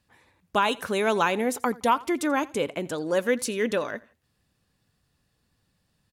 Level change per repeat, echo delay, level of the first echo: -10.5 dB, 84 ms, -22.0 dB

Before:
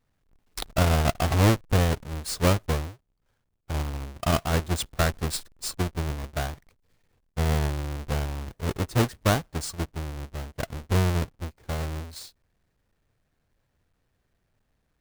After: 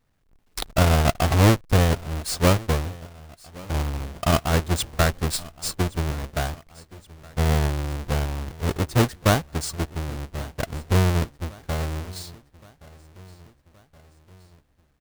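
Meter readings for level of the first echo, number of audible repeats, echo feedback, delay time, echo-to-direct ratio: -21.5 dB, 3, 54%, 1121 ms, -20.0 dB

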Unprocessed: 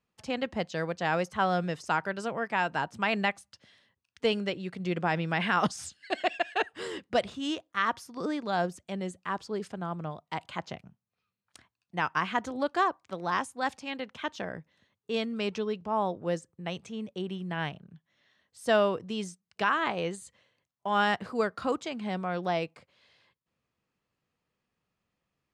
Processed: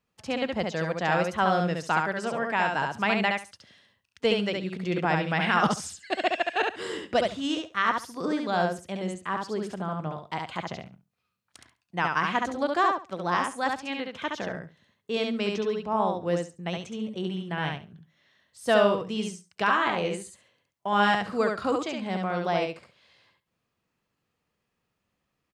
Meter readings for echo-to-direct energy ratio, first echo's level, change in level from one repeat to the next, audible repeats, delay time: -3.5 dB, -3.5 dB, -15.5 dB, 3, 69 ms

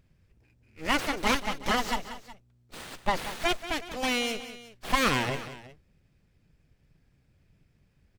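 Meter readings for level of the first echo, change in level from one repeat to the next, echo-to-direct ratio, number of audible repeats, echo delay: -13.0 dB, -5.0 dB, -12.0 dB, 2, 184 ms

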